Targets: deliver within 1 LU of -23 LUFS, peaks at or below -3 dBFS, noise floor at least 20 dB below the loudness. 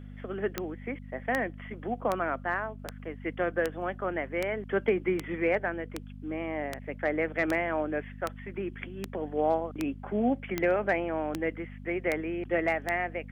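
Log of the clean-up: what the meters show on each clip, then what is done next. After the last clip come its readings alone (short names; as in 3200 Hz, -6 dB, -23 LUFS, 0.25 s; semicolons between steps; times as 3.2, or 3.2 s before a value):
clicks 17; hum 50 Hz; harmonics up to 250 Hz; hum level -41 dBFS; loudness -31.5 LUFS; peak -11.5 dBFS; loudness target -23.0 LUFS
-> de-click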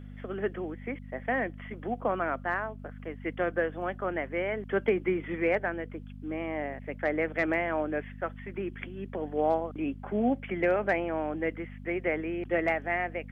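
clicks 0; hum 50 Hz; harmonics up to 250 Hz; hum level -41 dBFS
-> de-hum 50 Hz, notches 5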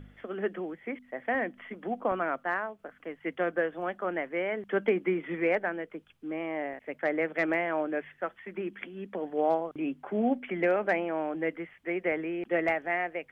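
hum none; loudness -31.5 LUFS; peak -15.0 dBFS; loudness target -23.0 LUFS
-> gain +8.5 dB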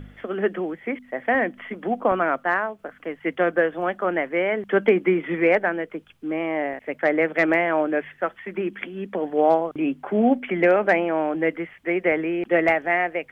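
loudness -23.0 LUFS; peak -6.5 dBFS; noise floor -54 dBFS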